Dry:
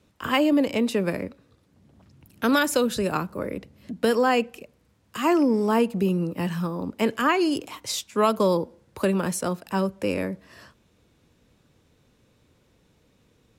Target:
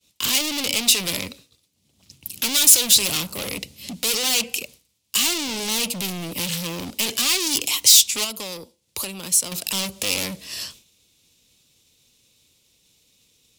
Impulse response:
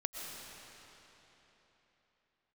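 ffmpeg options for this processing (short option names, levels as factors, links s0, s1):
-filter_complex "[0:a]asoftclip=type=tanh:threshold=0.0668,asettb=1/sr,asplit=3[s0][s1][s2];[s0]atrim=end=8.244[s3];[s1]atrim=start=8.24:end=9.52,asetpts=PTS-STARTPTS,afade=t=in:d=0.004:c=qsin,afade=t=out:st=1.276:d=0.004:c=qsin,acompressor=threshold=0.01:ratio=6[s4];[s2]atrim=start=9.516[s5];[s3][s4]acrossfade=d=0.004:c1=hsin:c2=qsin[s6];[s6][s5]acrossfade=d=0.004:c1=qsin:c2=hsin,asoftclip=type=hard:threshold=0.02,aexciter=amount=9.1:drive=4.7:freq=2400,agate=range=0.0224:threshold=0.00708:ratio=3:detection=peak,volume=1.58"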